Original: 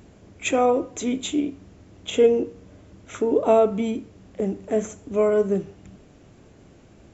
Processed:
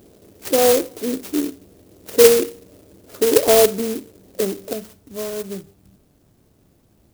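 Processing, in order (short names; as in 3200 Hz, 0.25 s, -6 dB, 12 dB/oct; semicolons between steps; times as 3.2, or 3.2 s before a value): bell 450 Hz +12.5 dB 1.6 oct, from 4.73 s -2.5 dB; clock jitter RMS 0.13 ms; gain -6 dB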